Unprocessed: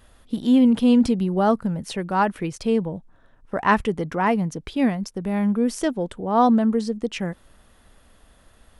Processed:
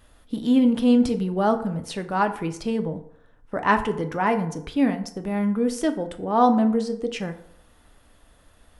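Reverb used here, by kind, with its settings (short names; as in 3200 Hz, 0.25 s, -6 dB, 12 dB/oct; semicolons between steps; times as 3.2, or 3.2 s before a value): FDN reverb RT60 0.7 s, low-frequency decay 0.75×, high-frequency decay 0.55×, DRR 6.5 dB; gain -2 dB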